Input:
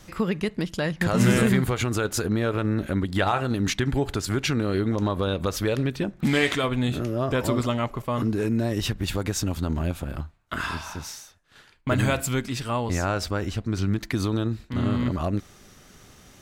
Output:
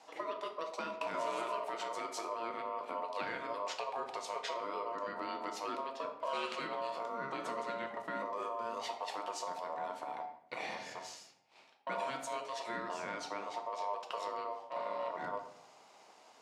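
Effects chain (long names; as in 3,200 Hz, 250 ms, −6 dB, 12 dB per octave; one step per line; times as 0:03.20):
downward compressor 3 to 1, threshold −27 dBFS, peak gain reduction 9.5 dB
ring modulation 810 Hz
band-pass filter 230–7,200 Hz
rectangular room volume 160 cubic metres, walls mixed, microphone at 0.59 metres
level −8 dB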